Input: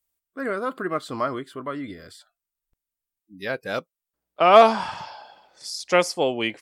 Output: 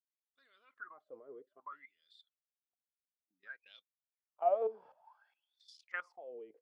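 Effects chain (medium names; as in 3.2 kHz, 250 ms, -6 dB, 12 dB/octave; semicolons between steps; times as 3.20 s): level held to a coarse grid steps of 17 dB; wah-wah 0.58 Hz 430–3700 Hz, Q 17; trim -1.5 dB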